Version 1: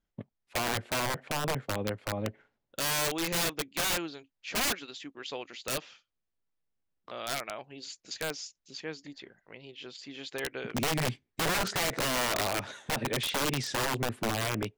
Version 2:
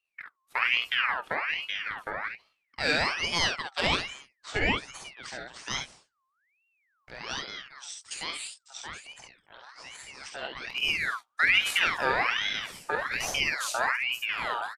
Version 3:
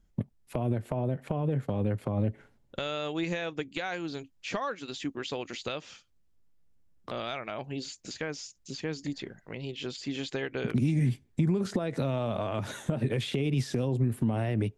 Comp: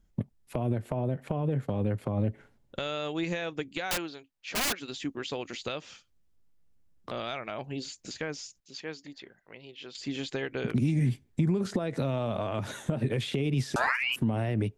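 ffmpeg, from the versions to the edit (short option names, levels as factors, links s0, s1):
-filter_complex "[0:a]asplit=2[s0][s1];[2:a]asplit=4[s2][s3][s4][s5];[s2]atrim=end=3.912[s6];[s0]atrim=start=3.908:end=4.802[s7];[s3]atrim=start=4.798:end=8.602[s8];[s1]atrim=start=8.598:end=9.952[s9];[s4]atrim=start=9.948:end=13.762[s10];[1:a]atrim=start=13.758:end=14.162[s11];[s5]atrim=start=14.158[s12];[s6][s7]acrossfade=d=0.004:c1=hsin:c2=hsin[s13];[s13][s8]acrossfade=d=0.004:c1=hsin:c2=hsin[s14];[s14][s9]acrossfade=d=0.004:c1=hsin:c2=hsin[s15];[s15][s10]acrossfade=d=0.004:c1=hsin:c2=hsin[s16];[s16][s11]acrossfade=d=0.004:c1=hsin:c2=hsin[s17];[s17][s12]acrossfade=d=0.004:c1=hsin:c2=hsin"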